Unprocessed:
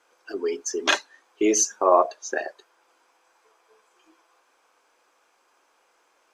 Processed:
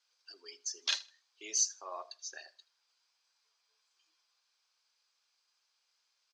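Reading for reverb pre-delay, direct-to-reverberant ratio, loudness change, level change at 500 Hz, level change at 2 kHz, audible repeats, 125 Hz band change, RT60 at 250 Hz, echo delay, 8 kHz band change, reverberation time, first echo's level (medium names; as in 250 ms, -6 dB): no reverb, no reverb, -12.0 dB, -29.5 dB, -17.0 dB, 2, no reading, no reverb, 79 ms, -8.0 dB, no reverb, -21.0 dB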